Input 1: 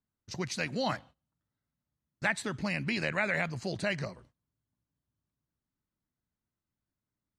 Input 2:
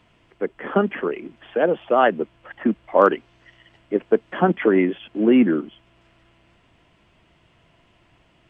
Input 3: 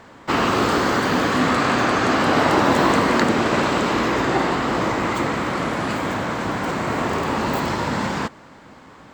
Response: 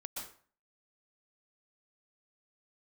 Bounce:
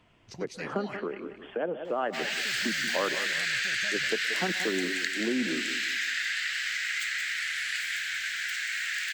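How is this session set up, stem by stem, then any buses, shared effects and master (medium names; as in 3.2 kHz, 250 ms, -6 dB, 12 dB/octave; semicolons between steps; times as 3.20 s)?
-5.0 dB, 0.00 s, no send, echo send -18 dB, none
-5.0 dB, 0.00 s, send -16 dB, echo send -12 dB, none
-2.0 dB, 1.85 s, no send, echo send -7 dB, steep high-pass 1.6 kHz 72 dB/octave; level rider gain up to 8 dB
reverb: on, RT60 0.45 s, pre-delay 113 ms
echo: feedback delay 181 ms, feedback 34%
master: compression 2:1, threshold -34 dBFS, peak gain reduction 12 dB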